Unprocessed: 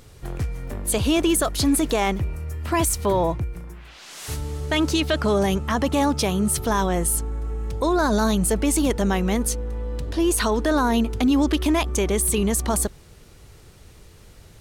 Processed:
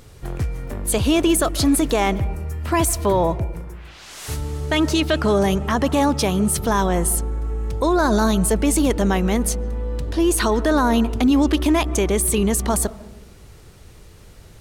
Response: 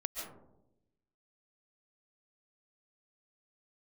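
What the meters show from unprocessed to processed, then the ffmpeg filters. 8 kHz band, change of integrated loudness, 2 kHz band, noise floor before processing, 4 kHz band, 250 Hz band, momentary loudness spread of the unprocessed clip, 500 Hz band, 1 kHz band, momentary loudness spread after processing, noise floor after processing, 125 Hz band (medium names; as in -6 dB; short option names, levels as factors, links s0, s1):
+1.5 dB, +2.5 dB, +2.0 dB, -48 dBFS, +1.5 dB, +3.0 dB, 10 LU, +3.0 dB, +2.5 dB, 10 LU, -44 dBFS, +3.0 dB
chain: -filter_complex "[0:a]asplit=2[s0][s1];[1:a]atrim=start_sample=2205,lowpass=2700[s2];[s1][s2]afir=irnorm=-1:irlink=0,volume=0.178[s3];[s0][s3]amix=inputs=2:normalize=0,volume=1.19"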